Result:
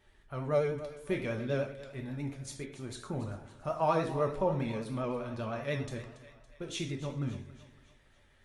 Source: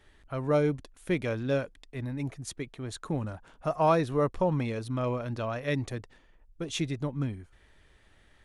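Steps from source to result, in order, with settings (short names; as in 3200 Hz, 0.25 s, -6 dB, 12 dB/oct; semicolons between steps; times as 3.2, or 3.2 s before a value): split-band echo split 580 Hz, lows 0.138 s, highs 0.281 s, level -14.5 dB; non-linear reverb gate 0.16 s falling, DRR 1.5 dB; vibrato 10 Hz 48 cents; gain -6.5 dB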